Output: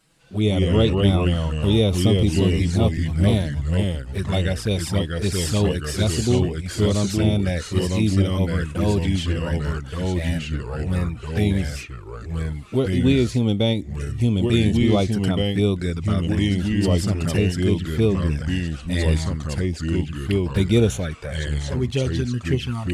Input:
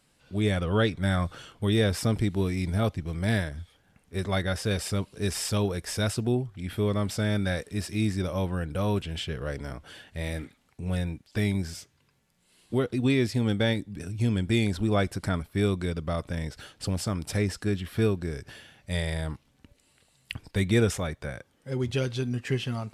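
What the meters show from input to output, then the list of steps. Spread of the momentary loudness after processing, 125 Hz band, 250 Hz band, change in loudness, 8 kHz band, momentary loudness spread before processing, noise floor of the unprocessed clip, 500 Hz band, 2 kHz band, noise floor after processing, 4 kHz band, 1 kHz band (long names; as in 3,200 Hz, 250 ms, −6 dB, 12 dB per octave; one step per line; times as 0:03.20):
8 LU, +8.5 dB, +8.0 dB, +7.0 dB, +5.5 dB, 12 LU, −67 dBFS, +6.5 dB, +2.5 dB, −35 dBFS, +7.0 dB, +3.5 dB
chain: flanger swept by the level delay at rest 6.3 ms, full sweep at −22.5 dBFS
delay with pitch and tempo change per echo 102 ms, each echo −2 semitones, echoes 2
level +6 dB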